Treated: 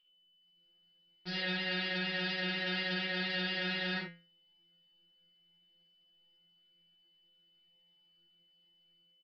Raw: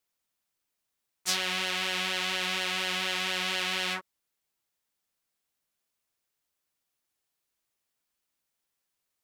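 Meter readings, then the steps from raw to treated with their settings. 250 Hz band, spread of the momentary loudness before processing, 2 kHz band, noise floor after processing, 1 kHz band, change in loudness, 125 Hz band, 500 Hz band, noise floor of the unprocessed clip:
+3.0 dB, 2 LU, -3.5 dB, -70 dBFS, -9.5 dB, -5.5 dB, +4.5 dB, -2.0 dB, -83 dBFS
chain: tilt shelf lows +7 dB, about 640 Hz; band-stop 1.1 kHz, Q 6.6; comb 5.3 ms, depth 41%; peak limiter -25 dBFS, peak gain reduction 9.5 dB; level rider gain up to 10 dB; whistle 3 kHz -58 dBFS; inharmonic resonator 170 Hz, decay 0.4 s, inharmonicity 0.002; on a send: early reflections 47 ms -4 dB, 72 ms -7 dB; on the sum: resampled via 11.025 kHz; trim +8 dB

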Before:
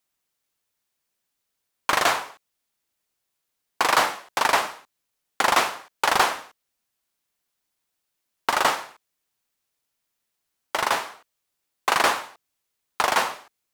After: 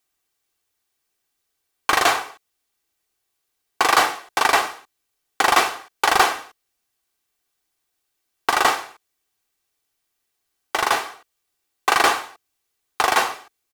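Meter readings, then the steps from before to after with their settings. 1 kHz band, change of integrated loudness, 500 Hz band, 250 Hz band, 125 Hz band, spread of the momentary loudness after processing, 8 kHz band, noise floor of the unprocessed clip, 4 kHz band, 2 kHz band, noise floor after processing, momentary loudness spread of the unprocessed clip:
+3.5 dB, +3.5 dB, +2.5 dB, +3.5 dB, +1.0 dB, 11 LU, +3.5 dB, -80 dBFS, +3.0 dB, +3.5 dB, -76 dBFS, 11 LU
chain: comb 2.6 ms, depth 43%; trim +2.5 dB

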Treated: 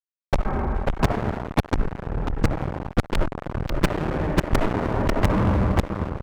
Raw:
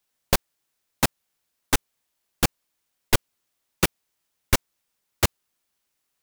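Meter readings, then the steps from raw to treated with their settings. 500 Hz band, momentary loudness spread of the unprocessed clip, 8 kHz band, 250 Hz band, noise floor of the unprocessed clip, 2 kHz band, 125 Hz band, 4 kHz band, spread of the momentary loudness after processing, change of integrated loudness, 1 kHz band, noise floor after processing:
+7.5 dB, 1 LU, -13.5 dB, +9.0 dB, -78 dBFS, 0.0 dB, +9.5 dB, -7.0 dB, 8 LU, +1.5 dB, +5.5 dB, -80 dBFS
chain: resonances exaggerated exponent 1.5; gate -16 dBFS, range -28 dB; Gaussian low-pass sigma 5.7 samples; saturation -11 dBFS, distortion -16 dB; on a send: delay 543 ms -6.5 dB; on the sum: algorithmic reverb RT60 2.3 s, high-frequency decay 0.7×, pre-delay 15 ms, DRR 16.5 dB; in parallel at -1 dB: compression 16:1, threshold -42 dBFS, peak gain reduction 25.5 dB; on the sum: fuzz box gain 47 dB, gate -52 dBFS

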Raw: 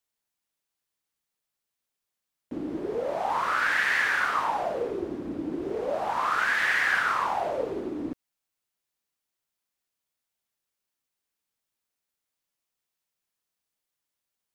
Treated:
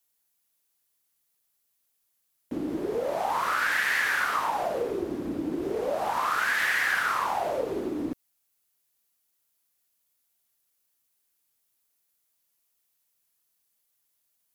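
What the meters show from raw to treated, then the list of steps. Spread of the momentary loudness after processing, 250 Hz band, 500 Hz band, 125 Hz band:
9 LU, +1.5 dB, +0.5 dB, +1.0 dB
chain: peaking EQ 12 kHz +7 dB 0.27 oct; compression 2:1, threshold -29 dBFS, peak gain reduction 5.5 dB; treble shelf 5.4 kHz +8.5 dB; trim +2.5 dB

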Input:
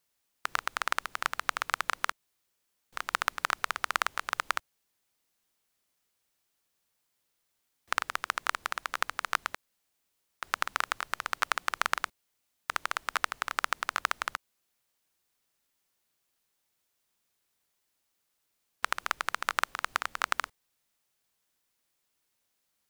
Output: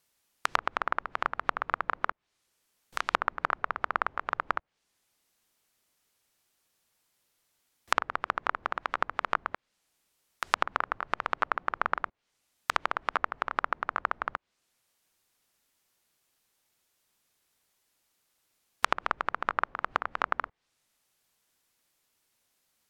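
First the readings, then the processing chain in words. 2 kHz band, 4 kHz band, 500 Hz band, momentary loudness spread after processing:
-1.0 dB, -5.0 dB, +6.0 dB, 5 LU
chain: low-pass that closes with the level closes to 1.2 kHz, closed at -32 dBFS; trim +4.5 dB

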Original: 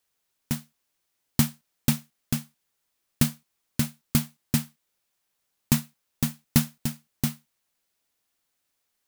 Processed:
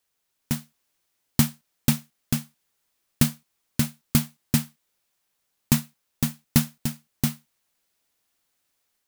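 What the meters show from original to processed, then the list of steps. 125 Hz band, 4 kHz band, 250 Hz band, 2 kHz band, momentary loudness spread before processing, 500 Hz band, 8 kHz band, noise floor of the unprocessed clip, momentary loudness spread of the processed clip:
+2.0 dB, +2.0 dB, +2.0 dB, +2.0 dB, 8 LU, +2.0 dB, +2.0 dB, -78 dBFS, 7 LU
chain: level rider gain up to 3 dB

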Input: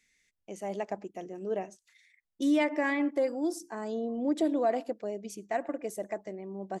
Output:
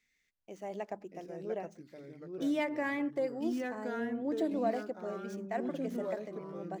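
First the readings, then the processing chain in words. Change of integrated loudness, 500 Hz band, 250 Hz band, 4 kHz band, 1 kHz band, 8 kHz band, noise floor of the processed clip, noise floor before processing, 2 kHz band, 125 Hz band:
-4.0 dB, -4.0 dB, -4.0 dB, -5.0 dB, -4.5 dB, under -10 dB, -78 dBFS, -82 dBFS, -4.0 dB, no reading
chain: median filter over 5 samples; ever faster or slower copies 544 ms, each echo -3 st, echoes 3, each echo -6 dB; de-hum 99.68 Hz, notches 3; trim -5 dB

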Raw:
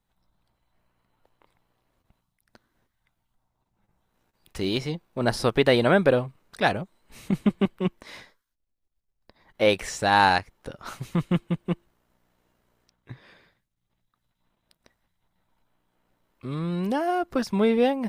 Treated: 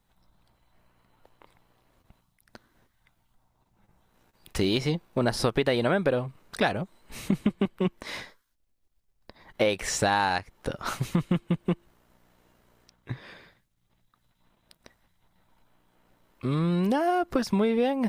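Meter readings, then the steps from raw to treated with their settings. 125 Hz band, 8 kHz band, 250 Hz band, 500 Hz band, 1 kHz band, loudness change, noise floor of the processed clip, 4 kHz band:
-0.5 dB, +4.0 dB, -1.0 dB, -3.0 dB, -4.0 dB, -3.0 dB, -72 dBFS, -2.5 dB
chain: compression 6:1, threshold -28 dBFS, peak gain reduction 13.5 dB; trim +6.5 dB

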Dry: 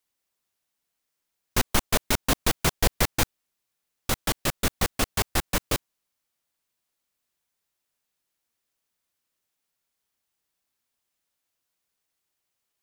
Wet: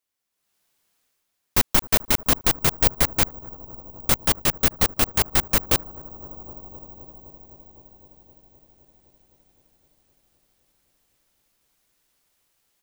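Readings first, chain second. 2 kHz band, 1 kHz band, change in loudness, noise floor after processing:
+1.5 dB, +1.5 dB, +6.0 dB, -77 dBFS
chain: bucket-brigade echo 257 ms, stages 2048, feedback 80%, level -21 dB; level rider gain up to 14.5 dB; careless resampling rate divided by 2×, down none, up zero stuff; trim -6.5 dB

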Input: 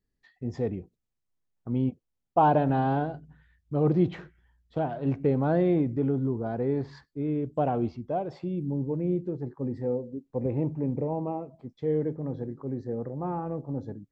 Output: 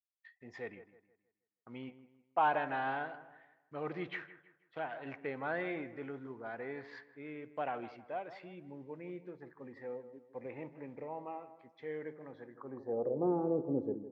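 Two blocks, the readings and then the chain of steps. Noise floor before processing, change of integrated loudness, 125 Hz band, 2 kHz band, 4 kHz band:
-81 dBFS, -10.5 dB, -21.0 dB, +2.5 dB, no reading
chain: expander -55 dBFS; feedback echo behind a low-pass 159 ms, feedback 36%, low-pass 2 kHz, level -13.5 dB; band-pass sweep 2 kHz -> 390 Hz, 12.47–13.24 s; trim +6 dB

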